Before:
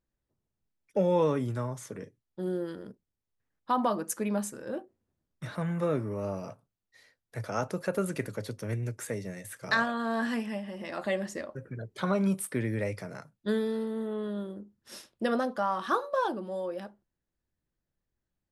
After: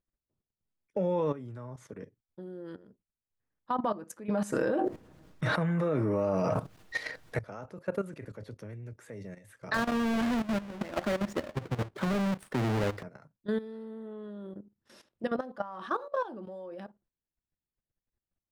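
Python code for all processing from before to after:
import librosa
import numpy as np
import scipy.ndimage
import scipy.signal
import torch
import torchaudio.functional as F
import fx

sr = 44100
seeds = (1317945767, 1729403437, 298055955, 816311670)

y = fx.chain(x, sr, fx.low_shelf(hz=200.0, db=-6.0),
    fx.comb(ms=6.4, depth=0.35),
    fx.env_flatten(amount_pct=100), at=(4.29, 7.39))
y = fx.chain(y, sr, fx.halfwave_hold(),
    fx.band_squash(depth_pct=70), at=(9.74, 13.03))
y = fx.lowpass(y, sr, hz=2300.0, slope=6)
y = fx.level_steps(y, sr, step_db=14)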